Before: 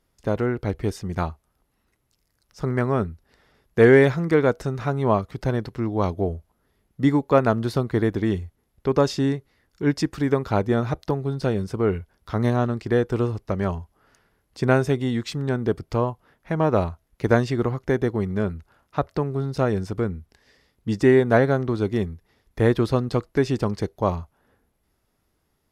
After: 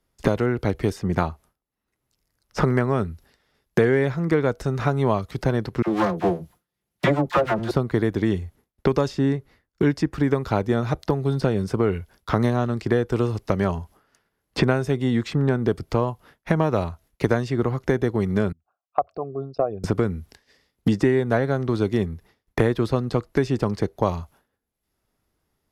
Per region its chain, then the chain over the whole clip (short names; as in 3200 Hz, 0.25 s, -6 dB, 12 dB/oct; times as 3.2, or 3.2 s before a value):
5.82–7.71 minimum comb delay 5.7 ms + HPF 77 Hz + dispersion lows, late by 50 ms, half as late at 860 Hz
18.52–19.84 formant sharpening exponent 2 + dynamic EQ 990 Hz, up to +3 dB, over -31 dBFS, Q 1 + vowel filter a
whole clip: expander -45 dBFS; three-band squash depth 100%